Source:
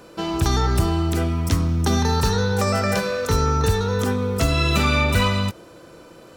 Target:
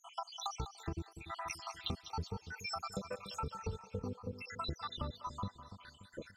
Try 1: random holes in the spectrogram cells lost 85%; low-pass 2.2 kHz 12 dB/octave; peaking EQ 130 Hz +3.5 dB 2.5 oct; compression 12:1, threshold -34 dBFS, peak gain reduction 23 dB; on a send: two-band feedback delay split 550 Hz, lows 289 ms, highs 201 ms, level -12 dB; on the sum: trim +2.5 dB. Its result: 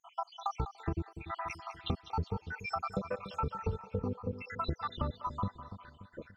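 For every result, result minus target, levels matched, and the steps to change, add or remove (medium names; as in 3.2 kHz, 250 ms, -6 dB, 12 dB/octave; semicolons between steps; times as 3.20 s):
8 kHz band -15.5 dB; compression: peak gain reduction -6 dB
change: low-pass 6.8 kHz 12 dB/octave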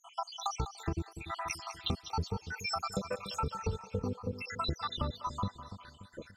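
compression: peak gain reduction -6 dB
change: compression 12:1, threshold -40.5 dBFS, peak gain reduction 28.5 dB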